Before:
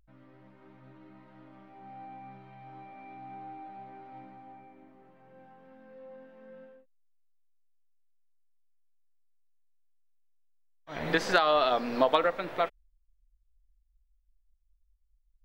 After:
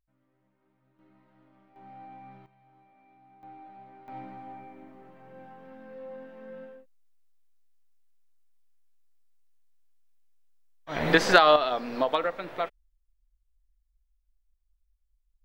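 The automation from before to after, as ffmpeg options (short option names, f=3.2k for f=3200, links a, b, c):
-af "asetnsamples=n=441:p=0,asendcmd='0.99 volume volume -8.5dB;1.76 volume volume -1dB;2.46 volume volume -13.5dB;3.43 volume volume -3.5dB;4.08 volume volume 6.5dB;11.56 volume volume -2dB',volume=-16.5dB"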